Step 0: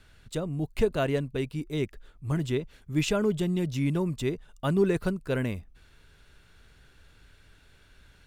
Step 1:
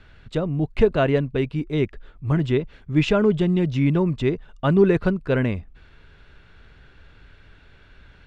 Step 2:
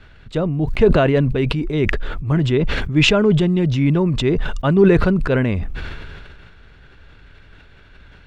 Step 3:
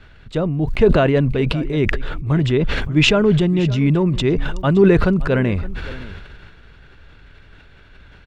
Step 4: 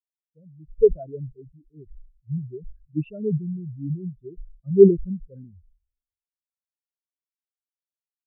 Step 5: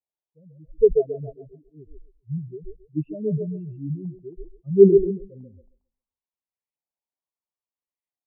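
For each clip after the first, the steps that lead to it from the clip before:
low-pass filter 3,100 Hz 12 dB per octave; level +7.5 dB
level that may fall only so fast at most 25 dB per second; level +2.5 dB
single-tap delay 568 ms −18 dB
every bin expanded away from the loudest bin 4 to 1
auto-filter low-pass saw up 0.74 Hz 710–2,000 Hz; Butterworth band-reject 1,500 Hz, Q 1.7; echo through a band-pass that steps 135 ms, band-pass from 440 Hz, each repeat 0.7 octaves, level −4.5 dB; level −1 dB

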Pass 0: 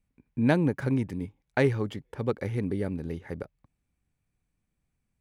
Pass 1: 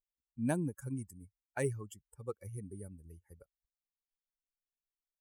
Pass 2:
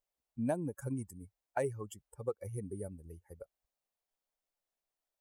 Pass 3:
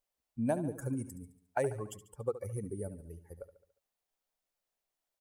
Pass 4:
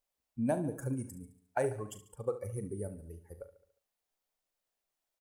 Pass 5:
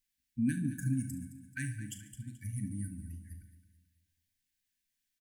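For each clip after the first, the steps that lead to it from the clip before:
spectral dynamics exaggerated over time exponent 2; high shelf with overshoot 6,000 Hz +14 dB, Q 3; notch filter 2,100 Hz, Q 15; level −8 dB
parametric band 640 Hz +12 dB 1.2 octaves; downward compressor 3 to 1, threshold −35 dBFS, peak gain reduction 10.5 dB; level +2 dB
repeating echo 71 ms, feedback 52%, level −13.5 dB; level +2 dB
double-tracking delay 39 ms −12 dB
linear-phase brick-wall band-stop 310–1,500 Hz; repeating echo 217 ms, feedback 41%, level −14 dB; convolution reverb, pre-delay 3 ms, DRR 11 dB; level +3 dB

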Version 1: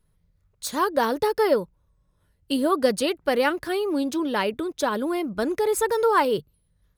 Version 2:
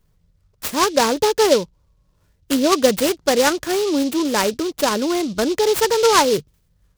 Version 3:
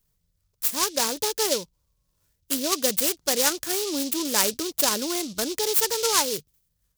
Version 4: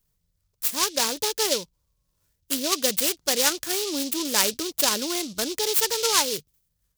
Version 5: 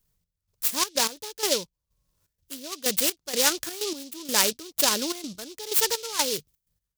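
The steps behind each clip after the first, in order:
short delay modulated by noise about 4,200 Hz, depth 0.076 ms; level +5.5 dB
first-order pre-emphasis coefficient 0.8; speech leveller 2 s; level +2.5 dB
dynamic equaliser 3,100 Hz, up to +4 dB, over −34 dBFS, Q 0.73; level −1 dB
gate pattern "xx..xxx.x..." 126 BPM −12 dB

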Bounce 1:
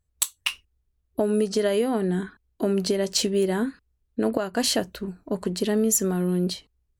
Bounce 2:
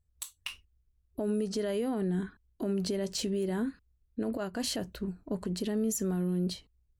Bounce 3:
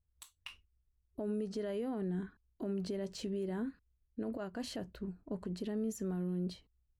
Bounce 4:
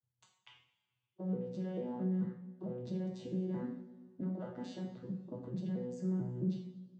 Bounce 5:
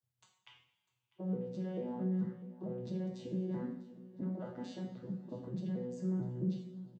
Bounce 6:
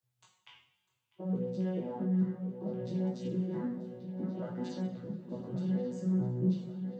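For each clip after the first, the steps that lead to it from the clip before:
low-shelf EQ 220 Hz +9 dB; brickwall limiter −16 dBFS, peak gain reduction 10 dB; level −7.5 dB
high-shelf EQ 4,100 Hz −10.5 dB; level −6 dB
vocoder with an arpeggio as carrier bare fifth, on B2, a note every 221 ms; coupled-rooms reverb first 0.53 s, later 1.9 s, from −17 dB, DRR −1 dB; level +2.5 dB
repeating echo 649 ms, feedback 45%, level −19 dB
chorus effect 0.63 Hz, delay 16 ms, depth 5.8 ms; delay with a low-pass on its return 1,132 ms, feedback 42%, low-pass 3,700 Hz, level −10 dB; level +6.5 dB

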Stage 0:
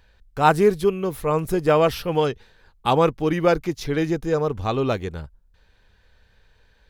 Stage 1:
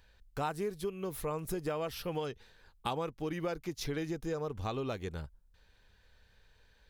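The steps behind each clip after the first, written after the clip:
downward compressor 6 to 1, threshold −26 dBFS, peak gain reduction 15 dB
high-shelf EQ 3,800 Hz +5.5 dB
level −7 dB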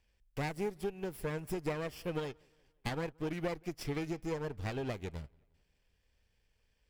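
lower of the sound and its delayed copy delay 0.38 ms
delay with a low-pass on its return 176 ms, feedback 48%, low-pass 3,900 Hz, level −22 dB
expander for the loud parts 1.5 to 1, over −52 dBFS
level +1 dB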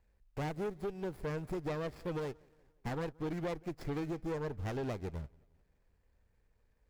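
running median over 15 samples
soft clipping −35.5 dBFS, distortion −12 dB
level +3.5 dB

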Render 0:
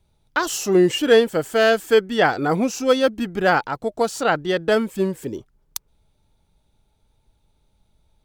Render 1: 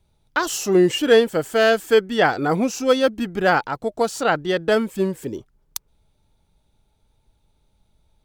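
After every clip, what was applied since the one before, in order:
no processing that can be heard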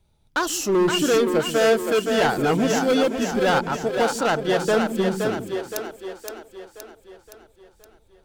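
hard clipping −16 dBFS, distortion −9 dB
echo with a time of its own for lows and highs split 320 Hz, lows 133 ms, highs 519 ms, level −5 dB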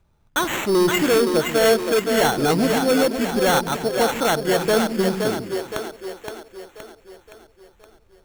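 decimation without filtering 9×
level +1.5 dB

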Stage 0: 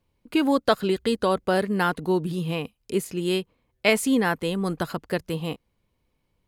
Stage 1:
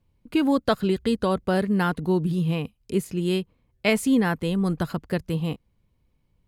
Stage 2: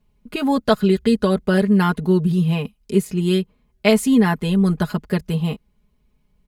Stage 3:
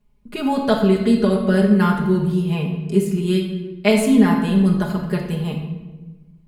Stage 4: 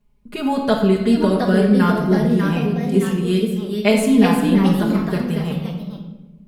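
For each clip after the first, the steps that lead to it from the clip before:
bass and treble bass +9 dB, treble −1 dB; level −2.5 dB
comb filter 4.8 ms, depth 83%; level +2.5 dB
convolution reverb RT60 1.2 s, pre-delay 5 ms, DRR 1 dB; level −3 dB
delay with pitch and tempo change per echo 791 ms, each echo +2 semitones, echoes 2, each echo −6 dB

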